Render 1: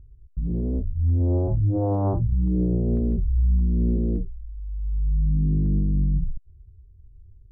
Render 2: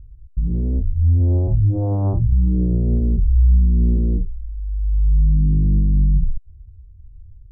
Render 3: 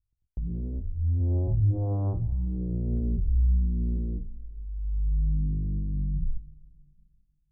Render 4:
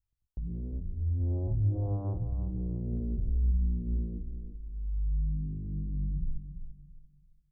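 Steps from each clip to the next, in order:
bass shelf 190 Hz +11.5 dB; trim -3.5 dB
tremolo 0.61 Hz, depth 41%; gate -34 dBFS, range -31 dB; two-slope reverb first 0.21 s, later 2.5 s, from -18 dB, DRR 11 dB; trim -8 dB
feedback delay 340 ms, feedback 28%, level -10 dB; trim -4.5 dB

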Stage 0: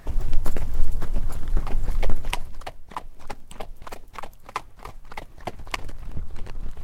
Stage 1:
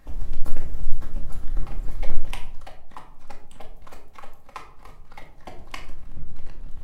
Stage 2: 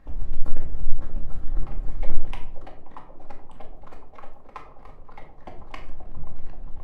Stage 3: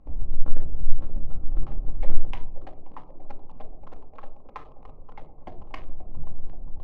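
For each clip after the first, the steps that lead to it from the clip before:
reverberation RT60 0.55 s, pre-delay 4 ms, DRR 1 dB; trim -9.5 dB
low-pass 1.6 kHz 6 dB/octave; feedback echo behind a band-pass 529 ms, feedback 69%, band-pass 450 Hz, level -7 dB
local Wiener filter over 25 samples; distance through air 65 m

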